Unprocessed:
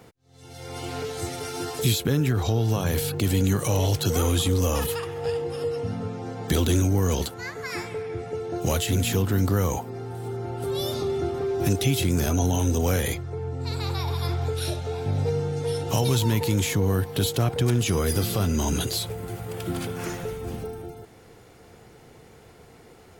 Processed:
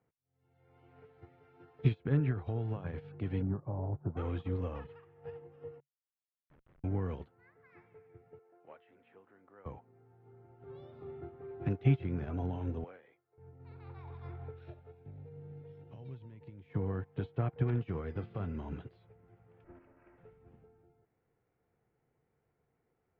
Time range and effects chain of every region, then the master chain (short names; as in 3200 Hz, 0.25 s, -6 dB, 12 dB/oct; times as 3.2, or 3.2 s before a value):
3.42–4.17 LPF 1100 Hz 24 dB/oct + notch 470 Hz, Q 6.3
5.8–6.84 HPF 980 Hz 6 dB/oct + Schmitt trigger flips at -23.5 dBFS
8.39–9.66 BPF 490–2700 Hz + air absorption 68 m
12.84–13.38 BPF 400–4400 Hz + upward expander, over -45 dBFS
14.91–16.7 bell 1100 Hz -8 dB 1.6 oct + compressor 4:1, threshold -25 dBFS
19.64–20.18 minimum comb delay 3.1 ms + Butterworth band-stop 3800 Hz, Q 1.4 + Doppler distortion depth 0.26 ms
whole clip: LPF 2300 Hz 24 dB/oct; bell 140 Hz +5.5 dB 0.24 oct; upward expander 2.5:1, over -32 dBFS; gain -5 dB